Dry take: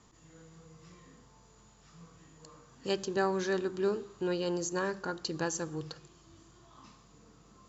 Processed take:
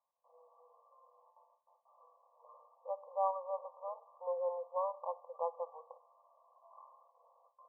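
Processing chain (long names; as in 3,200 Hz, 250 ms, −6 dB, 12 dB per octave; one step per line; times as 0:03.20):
noise gate with hold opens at −49 dBFS
0:00.81–0:03.36: shaped tremolo saw up 1.6 Hz, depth 30%
linear-phase brick-wall band-pass 490–1,200 Hz
level +1.5 dB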